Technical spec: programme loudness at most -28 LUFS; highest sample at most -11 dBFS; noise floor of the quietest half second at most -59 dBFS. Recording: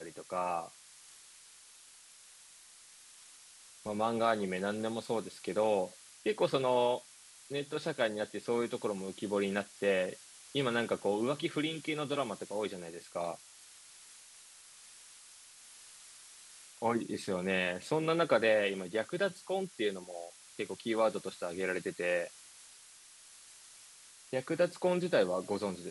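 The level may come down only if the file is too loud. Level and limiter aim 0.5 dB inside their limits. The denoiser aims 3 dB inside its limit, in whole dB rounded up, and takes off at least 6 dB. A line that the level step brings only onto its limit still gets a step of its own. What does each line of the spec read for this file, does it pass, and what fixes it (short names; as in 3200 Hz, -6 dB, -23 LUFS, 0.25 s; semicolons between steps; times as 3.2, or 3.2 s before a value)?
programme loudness -34.0 LUFS: OK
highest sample -16.5 dBFS: OK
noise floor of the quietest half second -57 dBFS: fail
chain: denoiser 6 dB, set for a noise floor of -57 dBFS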